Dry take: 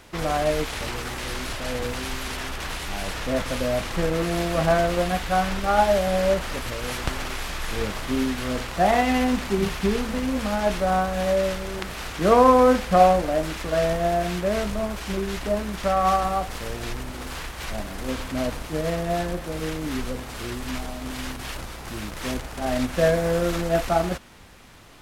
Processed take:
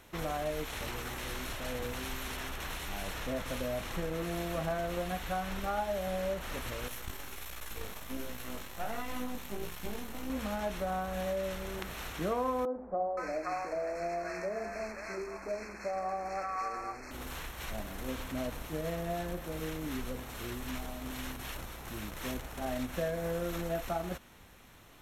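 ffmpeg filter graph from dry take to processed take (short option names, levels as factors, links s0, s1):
-filter_complex "[0:a]asettb=1/sr,asplit=3[s0][s1][s2];[s0]atrim=end=6.884[s3];[s1]atrim=start=6.88:end=10.3,asetpts=PTS-STARTPTS,afade=t=in:d=0.004:c=qsin,afade=t=out:st=3.416:d=0.004:c=qsin,highshelf=f=7900:g=8.5,aeval=exprs='max(val(0),0)':c=same,flanger=delay=17:depth=4.4:speed=1.4[s4];[s2]atrim=start=10.296[s5];[s3][s4]acrossfade=d=0.004:c1=hsin:c2=qsin[s6];[s6][s5]acrossfade=d=0.004:c1=qsin:c2=hsin,asettb=1/sr,asplit=3[s7][s8][s9];[s7]atrim=end=12.654[s10];[s8]atrim=start=12.65:end=17.11,asetpts=PTS-STARTPTS,afade=t=in:d=0.004:c=qsin,afade=t=out:st=4.456:d=0.004:c=qsin,asuperstop=centerf=3300:order=20:qfactor=2.1,acrossover=split=250 6900:gain=0.178 1 0.0708[s11][s12][s13];[s11][s12][s13]amix=inputs=3:normalize=0,acrossover=split=180|890[s14][s15][s16];[s14]adelay=100[s17];[s16]adelay=520[s18];[s17][s15][s18]amix=inputs=3:normalize=0,atrim=end_sample=196686[s19];[s9]atrim=start=17.106[s20];[s10][s19]acrossfade=d=0.004:c1=hsin:c2=qsin[s21];[s21][s20]acrossfade=d=0.004:c1=qsin:c2=hsin,acompressor=threshold=0.0631:ratio=3,equalizer=f=13000:w=6.3:g=13,bandreject=f=4800:w=6.6,volume=0.398"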